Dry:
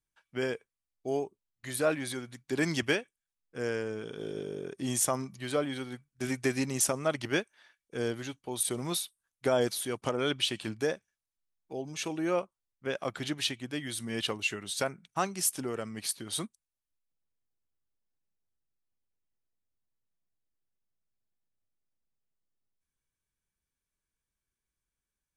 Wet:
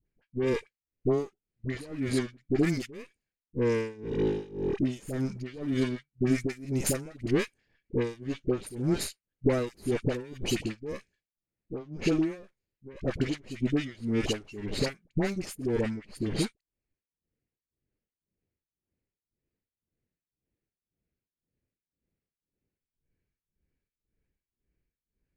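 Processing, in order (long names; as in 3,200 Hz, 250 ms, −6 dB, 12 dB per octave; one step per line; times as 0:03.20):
lower of the sound and its delayed copy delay 0.44 ms
low-pass that shuts in the quiet parts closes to 2,200 Hz, open at −26 dBFS
downward compressor, threshold −35 dBFS, peak gain reduction 11.5 dB
amplitude tremolo 1.9 Hz, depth 93%
low shelf with overshoot 570 Hz +6 dB, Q 1.5
all-pass dispersion highs, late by 60 ms, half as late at 820 Hz
level +8 dB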